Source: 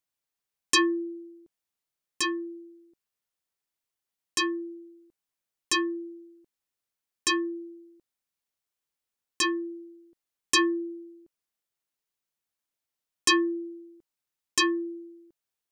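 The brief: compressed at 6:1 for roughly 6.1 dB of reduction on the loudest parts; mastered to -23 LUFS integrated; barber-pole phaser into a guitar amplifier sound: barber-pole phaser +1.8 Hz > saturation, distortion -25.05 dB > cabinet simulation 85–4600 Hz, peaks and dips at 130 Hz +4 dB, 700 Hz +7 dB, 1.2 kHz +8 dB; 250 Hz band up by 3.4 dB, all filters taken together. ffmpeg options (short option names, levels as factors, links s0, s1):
-filter_complex "[0:a]equalizer=f=250:t=o:g=5.5,acompressor=threshold=0.0631:ratio=6,asplit=2[s0][s1];[s1]afreqshift=1.8[s2];[s0][s2]amix=inputs=2:normalize=1,asoftclip=threshold=0.126,highpass=85,equalizer=f=130:t=q:w=4:g=4,equalizer=f=700:t=q:w=4:g=7,equalizer=f=1200:t=q:w=4:g=8,lowpass=f=4600:w=0.5412,lowpass=f=4600:w=1.3066,volume=3.76"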